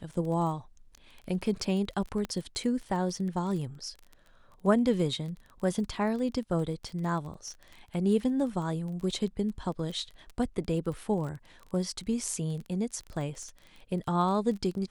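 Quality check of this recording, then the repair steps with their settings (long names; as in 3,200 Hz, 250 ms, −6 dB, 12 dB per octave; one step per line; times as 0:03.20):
surface crackle 20 per second −36 dBFS
0:02.25: click −21 dBFS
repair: click removal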